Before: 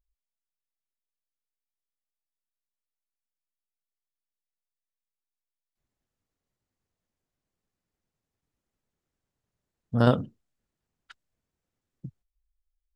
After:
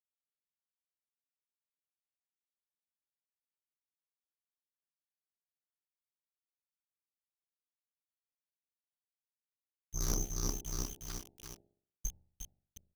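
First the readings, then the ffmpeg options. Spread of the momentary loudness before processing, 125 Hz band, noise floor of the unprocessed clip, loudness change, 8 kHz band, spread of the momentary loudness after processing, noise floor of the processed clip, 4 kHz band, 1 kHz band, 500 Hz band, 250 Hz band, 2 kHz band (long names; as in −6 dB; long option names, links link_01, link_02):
14 LU, −14.0 dB, below −85 dBFS, −14.5 dB, can't be measured, 16 LU, below −85 dBFS, −3.0 dB, −16.5 dB, −18.5 dB, −16.0 dB, −14.5 dB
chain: -filter_complex "[0:a]lowpass=frequency=2800:width_type=q:width=0.5098,lowpass=frequency=2800:width_type=q:width=0.6013,lowpass=frequency=2800:width_type=q:width=0.9,lowpass=frequency=2800:width_type=q:width=2.563,afreqshift=-3300,aecho=1:1:356|712|1068|1424:0.282|0.116|0.0474|0.0194,asplit=2[link_01][link_02];[link_02]aeval=exprs='(mod(4.47*val(0)+1,2)-1)/4.47':channel_layout=same,volume=-10dB[link_03];[link_01][link_03]amix=inputs=2:normalize=0,aeval=exprs='val(0)+0.000447*(sin(2*PI*60*n/s)+sin(2*PI*2*60*n/s)/2+sin(2*PI*3*60*n/s)/3+sin(2*PI*4*60*n/s)/4+sin(2*PI*5*60*n/s)/5)':channel_layout=same,aeval=exprs='abs(val(0))':channel_layout=same,acrusher=bits=7:mix=0:aa=0.000001,bandreject=frequency=47.32:width_type=h:width=4,bandreject=frequency=94.64:width_type=h:width=4,bandreject=frequency=141.96:width_type=h:width=4,bandreject=frequency=189.28:width_type=h:width=4,bandreject=frequency=236.6:width_type=h:width=4,bandreject=frequency=283.92:width_type=h:width=4,bandreject=frequency=331.24:width_type=h:width=4,bandreject=frequency=378.56:width_type=h:width=4,bandreject=frequency=425.88:width_type=h:width=4,bandreject=frequency=473.2:width_type=h:width=4,bandreject=frequency=520.52:width_type=h:width=4,bandreject=frequency=567.84:width_type=h:width=4,bandreject=frequency=615.16:width_type=h:width=4,bandreject=frequency=662.48:width_type=h:width=4,bandreject=frequency=709.8:width_type=h:width=4,bandreject=frequency=757.12:width_type=h:width=4,bandreject=frequency=804.44:width_type=h:width=4,bandreject=frequency=851.76:width_type=h:width=4,aeval=exprs='val(0)*sin(2*PI*32*n/s)':channel_layout=same,areverse,acompressor=threshold=-34dB:ratio=8,areverse,volume=4dB"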